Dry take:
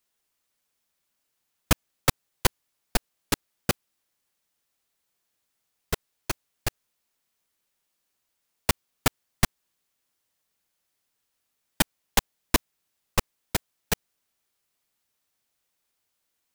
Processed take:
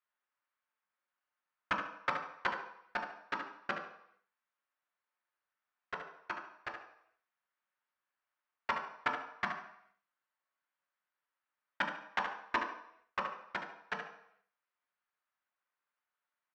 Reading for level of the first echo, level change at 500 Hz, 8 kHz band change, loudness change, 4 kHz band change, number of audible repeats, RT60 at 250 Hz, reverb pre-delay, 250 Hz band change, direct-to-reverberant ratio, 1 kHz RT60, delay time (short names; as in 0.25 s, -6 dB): -7.5 dB, -11.0 dB, under -30 dB, -10.0 dB, -16.5 dB, 1, 0.60 s, 3 ms, -16.5 dB, 0.0 dB, 0.70 s, 72 ms